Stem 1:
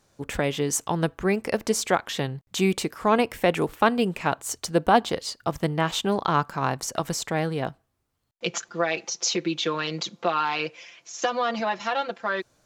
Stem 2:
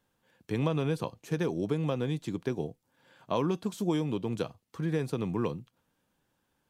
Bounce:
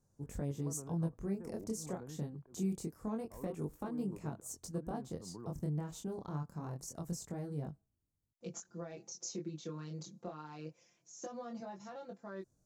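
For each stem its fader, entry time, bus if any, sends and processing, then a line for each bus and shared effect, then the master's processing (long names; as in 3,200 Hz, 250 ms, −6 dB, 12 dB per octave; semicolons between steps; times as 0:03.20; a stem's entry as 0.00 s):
−3.5 dB, 0.00 s, no send, downward compressor 2 to 1, threshold −24 dBFS, peak gain reduction 7 dB; drawn EQ curve 160 Hz 0 dB, 3,100 Hz −26 dB, 6,500 Hz −7 dB; chorus effect 0.25 Hz, delay 20 ms, depth 7.1 ms
−9.0 dB, 0.00 s, no send, low-pass filter 1,300 Hz 24 dB per octave; downward compressor 3 to 1, threshold −39 dBFS, peak gain reduction 12 dB; volume swells 145 ms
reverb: not used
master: no processing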